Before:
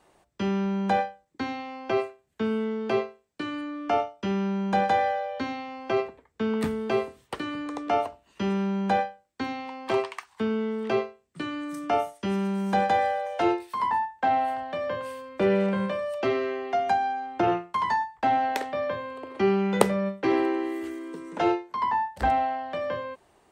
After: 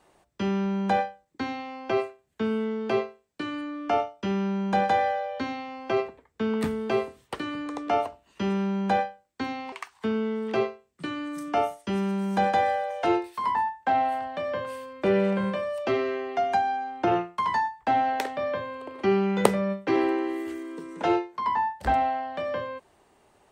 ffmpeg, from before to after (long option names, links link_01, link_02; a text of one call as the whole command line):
ffmpeg -i in.wav -filter_complex "[0:a]asplit=2[link_01][link_02];[link_01]atrim=end=9.722[link_03];[link_02]atrim=start=10.078[link_04];[link_03][link_04]acrossfade=duration=0.004:curve1=hsin:curve2=hsin" out.wav